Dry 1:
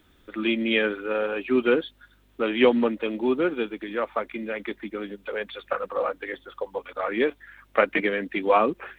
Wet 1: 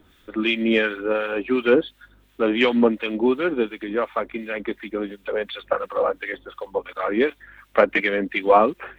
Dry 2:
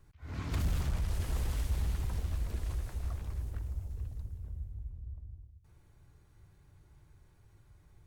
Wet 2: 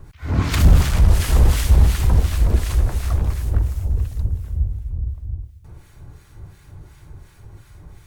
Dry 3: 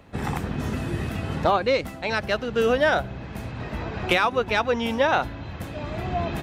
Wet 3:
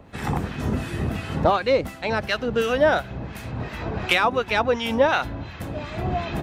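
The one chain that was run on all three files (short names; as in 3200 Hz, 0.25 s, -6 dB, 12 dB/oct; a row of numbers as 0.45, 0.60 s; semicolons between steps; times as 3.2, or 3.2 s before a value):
in parallel at -6 dB: soft clip -13 dBFS; on the sum: harmonic tremolo 2.8 Hz, depth 70%, crossover 1200 Hz; normalise peaks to -3 dBFS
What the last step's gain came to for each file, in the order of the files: +3.5, +18.0, +1.5 dB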